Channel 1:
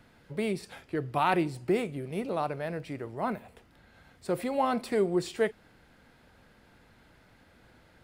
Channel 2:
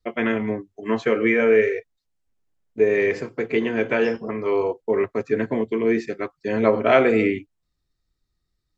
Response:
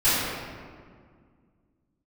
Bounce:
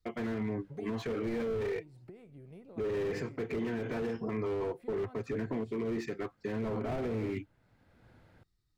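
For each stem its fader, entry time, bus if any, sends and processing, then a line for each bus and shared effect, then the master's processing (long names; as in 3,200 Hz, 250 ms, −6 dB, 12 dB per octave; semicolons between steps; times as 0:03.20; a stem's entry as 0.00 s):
−2.5 dB, 0.40 s, no send, downward compressor 10 to 1, threshold −35 dBFS, peak gain reduction 14.5 dB; high-shelf EQ 2,300 Hz −8.5 dB; automatic ducking −11 dB, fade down 1.55 s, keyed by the second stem
−3.5 dB, 0.00 s, no send, parametric band 560 Hz −9 dB 0.22 octaves; slew-rate limiting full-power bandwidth 42 Hz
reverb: not used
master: parametric band 110 Hz +6.5 dB 0.89 octaves; brickwall limiter −26.5 dBFS, peak gain reduction 11.5 dB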